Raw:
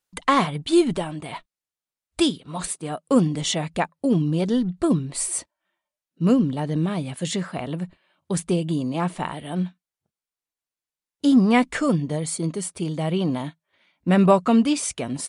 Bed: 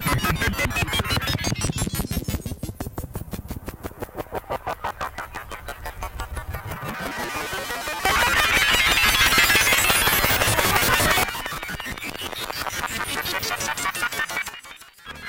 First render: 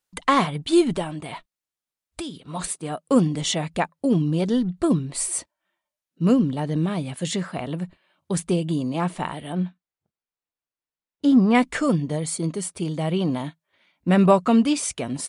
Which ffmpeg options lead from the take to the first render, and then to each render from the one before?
-filter_complex "[0:a]asettb=1/sr,asplit=3[s0][s1][s2];[s0]atrim=end=1.304[s3];[s1]atrim=start=1.3:end=2.46,asetpts=PTS-STARTPTS,afade=t=in:d=0.004:c=qsin,afade=t=out:st=1.156:d=0.004:c=qsin,acompressor=threshold=0.0355:ratio=6:attack=3.2:release=140:knee=1:detection=peak[s4];[s2]atrim=start=2.456[s5];[s3][s4]acrossfade=d=0.004:c1=hsin:c2=qsin[s6];[s6][s5]acrossfade=d=0.004:c1=qsin:c2=hsin,asettb=1/sr,asplit=3[s7][s8][s9];[s7]atrim=end=9.524[s10];[s8]atrim=start=9.52:end=11.55,asetpts=PTS-STARTPTS,afade=t=in:d=0.004:c=qsin,afade=t=out:st=2.026:d=0.004:c=qsin,lowpass=f=2500:p=1[s11];[s9]atrim=start=11.546[s12];[s10][s11]acrossfade=d=0.004:c1=hsin:c2=qsin[s13];[s13][s12]acrossfade=d=0.004:c1=qsin:c2=hsin"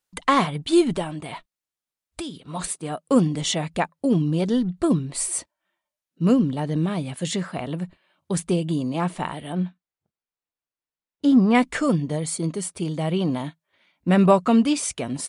-af anull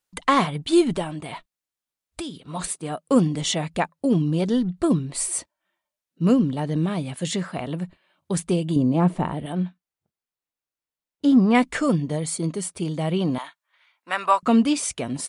-filter_complex "[0:a]asettb=1/sr,asplit=3[s0][s1][s2];[s0]atrim=end=8.764[s3];[s1]atrim=start=8.76:end=9.46,asetpts=PTS-STARTPTS,afade=t=in:d=0.004:c=qsin,afade=t=out:st=0.696:d=0.004:c=qsin,tiltshelf=f=970:g=7.5[s4];[s2]atrim=start=9.456[s5];[s3][s4]acrossfade=d=0.004:c1=hsin:c2=qsin[s6];[s6][s5]acrossfade=d=0.004:c1=qsin:c2=hsin,asettb=1/sr,asplit=3[s7][s8][s9];[s7]atrim=end=13.384[s10];[s8]atrim=start=13.38:end=14.43,asetpts=PTS-STARTPTS,afade=t=in:d=0.004:c=qsin,afade=t=out:st=1.046:d=0.004:c=qsin,highpass=f=1100:t=q:w=1.7[s11];[s9]atrim=start=14.426[s12];[s10][s11]acrossfade=d=0.004:c1=hsin:c2=qsin[s13];[s13][s12]acrossfade=d=0.004:c1=qsin:c2=hsin"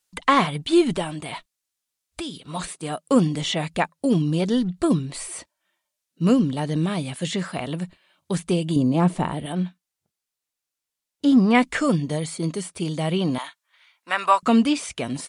-filter_complex "[0:a]acrossover=split=3200[s0][s1];[s1]acompressor=threshold=0.00631:ratio=4:attack=1:release=60[s2];[s0][s2]amix=inputs=2:normalize=0,equalizer=f=7800:w=0.31:g=9"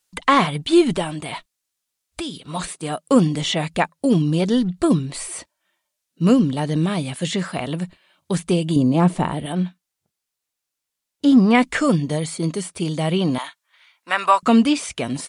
-af "volume=1.41,alimiter=limit=0.708:level=0:latency=1"

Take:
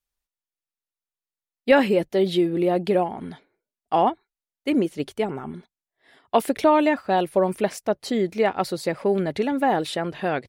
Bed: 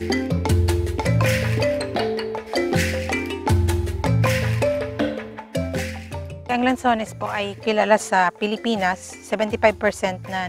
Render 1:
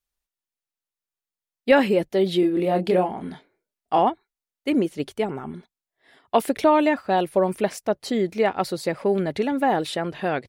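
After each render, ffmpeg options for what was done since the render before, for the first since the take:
-filter_complex "[0:a]asettb=1/sr,asplit=3[s0][s1][s2];[s0]atrim=end=2.404[s3];[s1]atrim=start=2.4:end=3.99,asetpts=PTS-STARTPTS,afade=t=in:d=0.004:c=qsin,afade=t=out:st=1.586:d=0.004:c=qsin,asplit=2[s4][s5];[s5]adelay=27,volume=0.531[s6];[s4][s6]amix=inputs=2:normalize=0,atrim=end_sample=70119[s7];[s2]atrim=start=3.986[s8];[s3][s7]acrossfade=d=0.004:c1=hsin:c2=qsin[s9];[s9][s8]acrossfade=d=0.004:c1=qsin:c2=hsin"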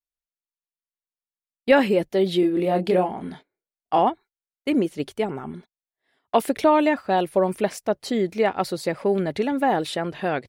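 -af "agate=range=0.2:threshold=0.00708:ratio=16:detection=peak"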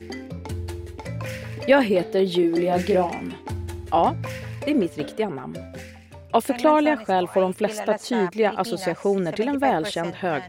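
-filter_complex "[1:a]volume=0.237[s0];[0:a][s0]amix=inputs=2:normalize=0"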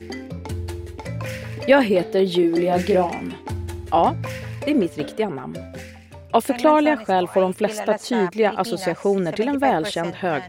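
-af "volume=1.26"

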